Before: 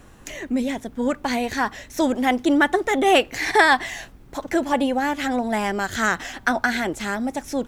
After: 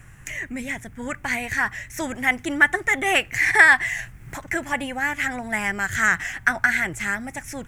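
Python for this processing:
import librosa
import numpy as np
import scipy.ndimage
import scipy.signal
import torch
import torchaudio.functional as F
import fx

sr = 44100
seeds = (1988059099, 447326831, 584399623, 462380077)

y = fx.graphic_eq_10(x, sr, hz=(125, 250, 500, 1000, 2000, 4000, 8000), db=(11, -10, -9, -5, 11, -12, 5))
y = fx.band_squash(y, sr, depth_pct=100, at=(3.99, 4.42))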